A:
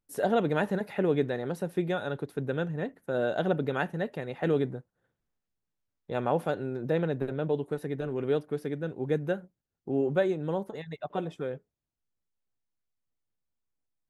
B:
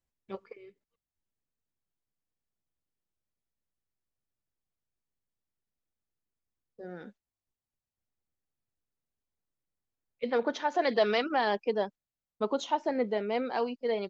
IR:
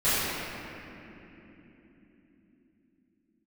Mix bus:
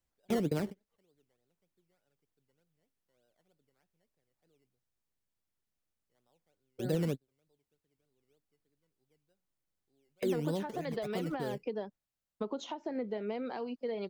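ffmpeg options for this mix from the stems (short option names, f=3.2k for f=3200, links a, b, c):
-filter_complex "[0:a]acrusher=samples=14:mix=1:aa=0.000001:lfo=1:lforange=8.4:lforate=3.3,volume=-1dB[a];[1:a]acompressor=threshold=-32dB:ratio=4,volume=1.5dB,asplit=2[b][c];[c]apad=whole_len=621517[d];[a][d]sidechaingate=range=-47dB:threshold=-49dB:ratio=16:detection=peak[e];[e][b]amix=inputs=2:normalize=0,acrossover=split=420[f][g];[g]acompressor=threshold=-41dB:ratio=4[h];[f][h]amix=inputs=2:normalize=0"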